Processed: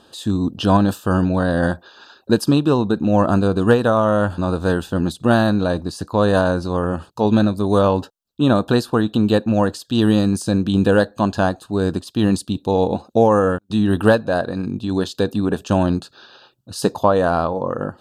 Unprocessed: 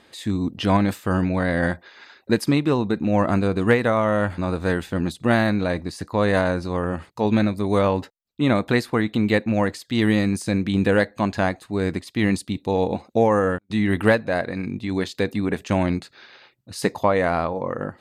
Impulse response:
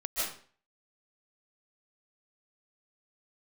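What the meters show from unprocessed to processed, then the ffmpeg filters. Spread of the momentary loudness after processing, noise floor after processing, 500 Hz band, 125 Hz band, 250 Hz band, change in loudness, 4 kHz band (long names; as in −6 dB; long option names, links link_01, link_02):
7 LU, −56 dBFS, +4.0 dB, +4.0 dB, +4.0 dB, +3.5 dB, +3.5 dB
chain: -af "asuperstop=centerf=2100:order=4:qfactor=1.9,volume=4dB"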